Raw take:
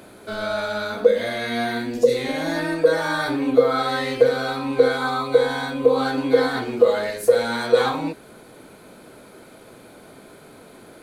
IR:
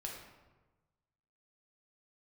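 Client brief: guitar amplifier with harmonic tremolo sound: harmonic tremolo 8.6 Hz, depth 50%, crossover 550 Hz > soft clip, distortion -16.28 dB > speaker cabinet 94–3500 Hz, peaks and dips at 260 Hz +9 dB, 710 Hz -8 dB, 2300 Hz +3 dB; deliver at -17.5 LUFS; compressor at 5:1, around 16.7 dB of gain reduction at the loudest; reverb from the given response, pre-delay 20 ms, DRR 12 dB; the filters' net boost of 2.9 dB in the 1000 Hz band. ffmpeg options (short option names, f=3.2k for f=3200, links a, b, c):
-filter_complex "[0:a]equalizer=f=1k:t=o:g=6.5,acompressor=threshold=-28dB:ratio=5,asplit=2[a][b];[1:a]atrim=start_sample=2205,adelay=20[c];[b][c]afir=irnorm=-1:irlink=0,volume=-11dB[d];[a][d]amix=inputs=2:normalize=0,acrossover=split=550[e][f];[e]aeval=exprs='val(0)*(1-0.5/2+0.5/2*cos(2*PI*8.6*n/s))':c=same[g];[f]aeval=exprs='val(0)*(1-0.5/2-0.5/2*cos(2*PI*8.6*n/s))':c=same[h];[g][h]amix=inputs=2:normalize=0,asoftclip=threshold=-26dB,highpass=94,equalizer=f=260:t=q:w=4:g=9,equalizer=f=710:t=q:w=4:g=-8,equalizer=f=2.3k:t=q:w=4:g=3,lowpass=f=3.5k:w=0.5412,lowpass=f=3.5k:w=1.3066,volume=15.5dB"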